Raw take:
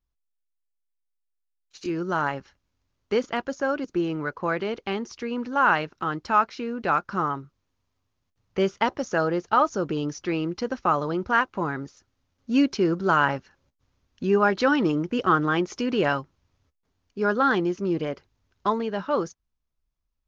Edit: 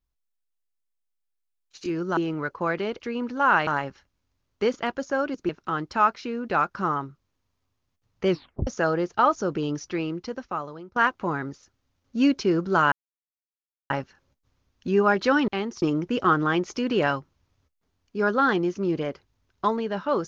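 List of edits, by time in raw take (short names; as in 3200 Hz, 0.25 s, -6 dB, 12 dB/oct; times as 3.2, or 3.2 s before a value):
2.17–3.99 move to 5.83
4.82–5.16 move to 14.84
8.63 tape stop 0.38 s
10.1–11.3 fade out, to -21 dB
13.26 insert silence 0.98 s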